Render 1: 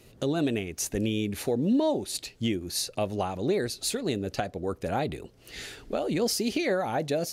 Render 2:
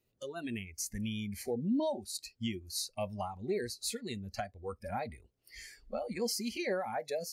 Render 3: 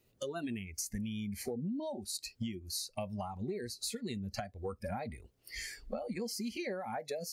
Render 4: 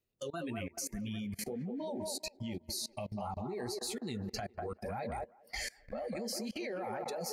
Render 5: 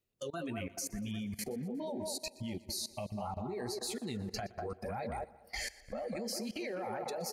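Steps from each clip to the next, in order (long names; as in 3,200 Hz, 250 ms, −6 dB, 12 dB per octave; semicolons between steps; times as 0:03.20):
noise reduction from a noise print of the clip's start 19 dB; level −6.5 dB
dynamic equaliser 180 Hz, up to +5 dB, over −49 dBFS, Q 0.78; downward compressor 10 to 1, threshold −43 dBFS, peak gain reduction 19 dB; level +7.5 dB
flanger 1.8 Hz, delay 1.2 ms, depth 7.7 ms, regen −40%; delay with a band-pass on its return 199 ms, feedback 55%, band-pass 710 Hz, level −3.5 dB; output level in coarse steps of 24 dB; level +9.5 dB
repeating echo 120 ms, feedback 55%, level −20.5 dB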